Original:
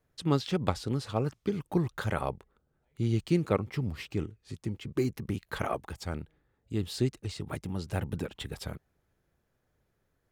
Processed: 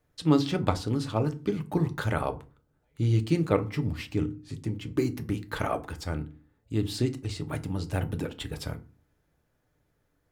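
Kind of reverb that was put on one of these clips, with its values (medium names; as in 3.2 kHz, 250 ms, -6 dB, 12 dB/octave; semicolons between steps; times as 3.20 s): FDN reverb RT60 0.34 s, low-frequency decay 1.55×, high-frequency decay 0.65×, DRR 7.5 dB; trim +2 dB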